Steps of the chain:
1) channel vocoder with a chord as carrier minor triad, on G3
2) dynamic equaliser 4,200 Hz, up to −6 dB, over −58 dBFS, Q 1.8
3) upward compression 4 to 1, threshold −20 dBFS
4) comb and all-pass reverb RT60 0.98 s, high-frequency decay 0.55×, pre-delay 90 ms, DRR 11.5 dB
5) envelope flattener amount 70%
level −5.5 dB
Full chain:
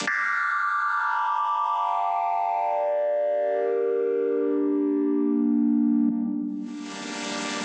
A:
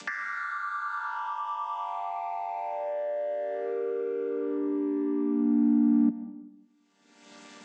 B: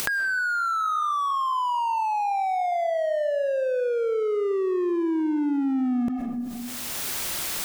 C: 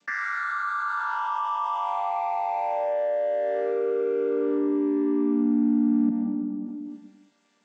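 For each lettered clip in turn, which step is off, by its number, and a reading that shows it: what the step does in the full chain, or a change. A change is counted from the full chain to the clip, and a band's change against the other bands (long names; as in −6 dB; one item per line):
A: 5, change in crest factor +4.0 dB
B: 1, 250 Hz band −2.5 dB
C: 3, change in momentary loudness spread −1 LU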